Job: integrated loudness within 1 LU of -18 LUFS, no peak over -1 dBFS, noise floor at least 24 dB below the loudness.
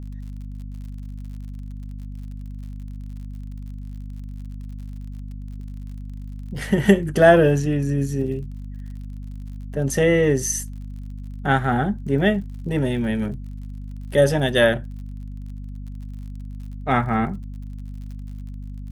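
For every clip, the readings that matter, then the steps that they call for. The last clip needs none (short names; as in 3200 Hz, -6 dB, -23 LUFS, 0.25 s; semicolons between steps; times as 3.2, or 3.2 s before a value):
ticks 53/s; hum 50 Hz; harmonics up to 250 Hz; hum level -31 dBFS; loudness -20.5 LUFS; peak -1.0 dBFS; loudness target -18.0 LUFS
-> de-click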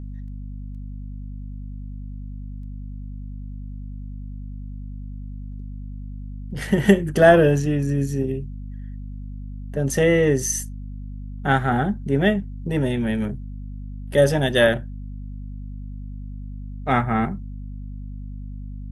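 ticks 0.16/s; hum 50 Hz; harmonics up to 250 Hz; hum level -31 dBFS
-> notches 50/100/150/200/250 Hz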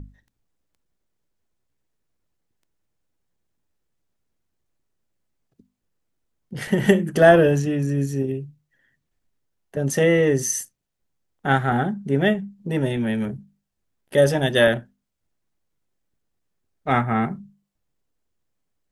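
hum none; loudness -20.5 LUFS; peak -2.0 dBFS; loudness target -18.0 LUFS
-> gain +2.5 dB; limiter -1 dBFS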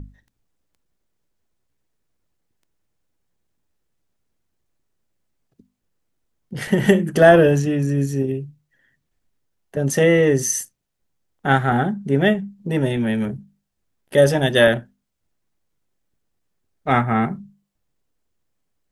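loudness -18.5 LUFS; peak -1.0 dBFS; noise floor -75 dBFS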